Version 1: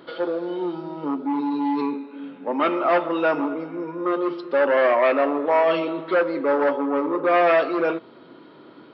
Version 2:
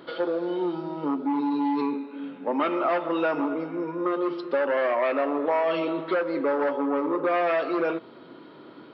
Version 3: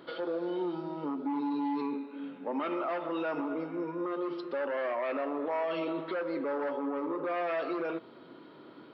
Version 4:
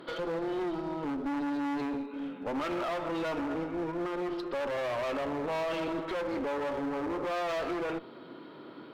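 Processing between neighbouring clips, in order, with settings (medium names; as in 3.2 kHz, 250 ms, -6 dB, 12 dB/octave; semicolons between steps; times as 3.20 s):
compression, threshold -21 dBFS, peak gain reduction 7 dB
peak limiter -20.5 dBFS, peak gain reduction 6.5 dB; trim -5 dB
one-sided clip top -39.5 dBFS, bottom -30.5 dBFS; trim +4 dB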